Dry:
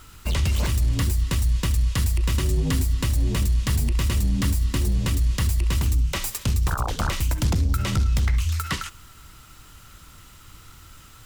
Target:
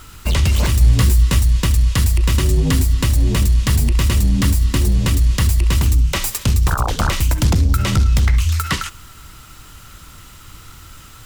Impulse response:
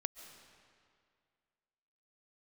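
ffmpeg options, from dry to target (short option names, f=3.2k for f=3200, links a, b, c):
-filter_complex "[0:a]asettb=1/sr,asplit=3[a][b][c];[a]atrim=end=0.794[d];[b]atrim=start=0.79:end=1.39,asetpts=PTS-STARTPTS,afade=t=in:d=0.004:c=qsin,afade=t=out:st=0.596:d=0.004:c=qsin,asplit=2[e][f];[f]adelay=16,volume=-5dB[g];[e][g]amix=inputs=2:normalize=0,atrim=end_sample=26460[h];[c]atrim=start=1.386[i];[d][h]acrossfade=d=0.004:c1=hsin:c2=qsin[j];[j][i]acrossfade=d=0.004:c1=qsin:c2=hsin,volume=7dB"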